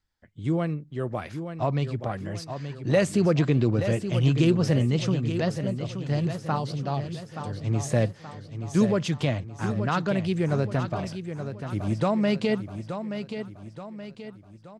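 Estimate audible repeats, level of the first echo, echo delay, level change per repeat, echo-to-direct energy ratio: 4, -9.0 dB, 0.876 s, -6.5 dB, -8.0 dB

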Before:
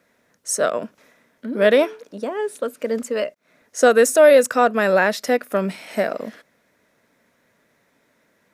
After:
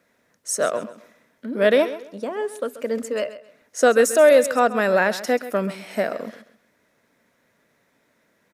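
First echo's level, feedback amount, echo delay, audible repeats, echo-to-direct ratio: -14.5 dB, 25%, 0.133 s, 2, -14.0 dB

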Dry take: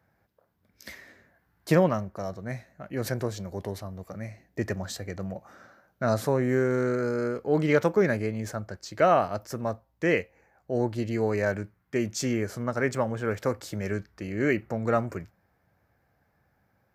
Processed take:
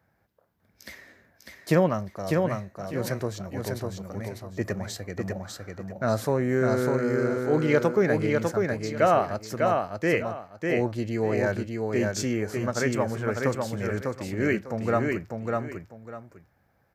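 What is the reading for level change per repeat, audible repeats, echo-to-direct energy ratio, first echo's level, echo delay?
-12.0 dB, 2, -3.0 dB, -3.5 dB, 0.599 s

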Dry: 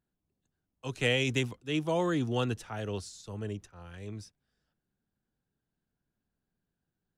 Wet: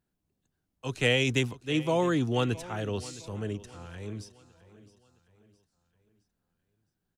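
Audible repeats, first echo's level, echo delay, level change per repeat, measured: 3, -18.5 dB, 0.664 s, -7.0 dB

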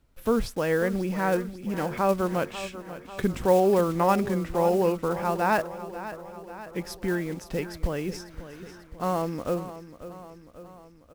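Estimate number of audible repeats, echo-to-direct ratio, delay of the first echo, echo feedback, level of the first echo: 5, -11.5 dB, 0.542 s, 59%, -13.5 dB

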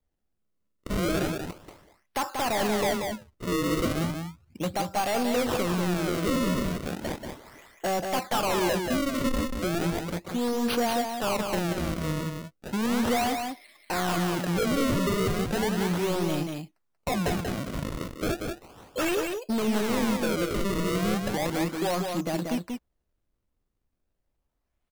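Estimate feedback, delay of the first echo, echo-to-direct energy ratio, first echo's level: no steady repeat, 0.185 s, -5.0 dB, -5.0 dB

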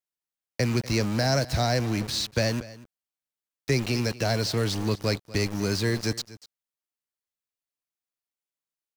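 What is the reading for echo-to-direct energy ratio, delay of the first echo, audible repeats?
-18.5 dB, 0.242 s, 1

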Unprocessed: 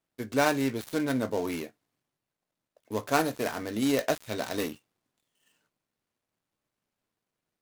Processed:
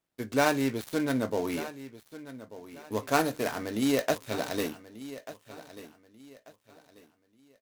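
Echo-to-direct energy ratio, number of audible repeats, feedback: -15.0 dB, 2, 31%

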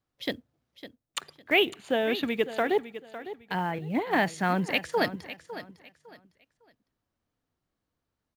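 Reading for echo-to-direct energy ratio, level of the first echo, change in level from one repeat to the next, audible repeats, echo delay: -13.0 dB, -13.5 dB, -11.5 dB, 2, 0.555 s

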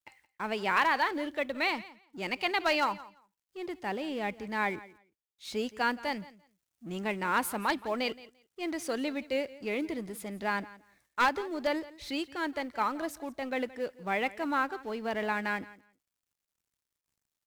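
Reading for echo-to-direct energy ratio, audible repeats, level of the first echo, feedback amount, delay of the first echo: -19.0 dB, 2, -19.0 dB, 16%, 0.171 s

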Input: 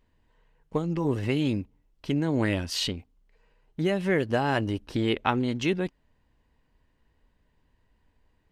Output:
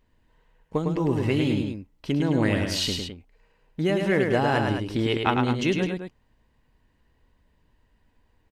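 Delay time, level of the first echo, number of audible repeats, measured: 0.105 s, -4.5 dB, 2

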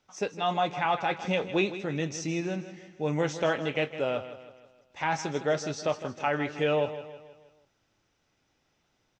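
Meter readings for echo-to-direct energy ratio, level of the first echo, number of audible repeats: -11.5 dB, -12.5 dB, 4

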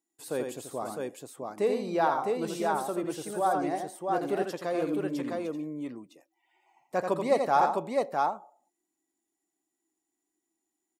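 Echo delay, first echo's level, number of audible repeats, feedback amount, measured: 84 ms, -5.5 dB, 3, no steady repeat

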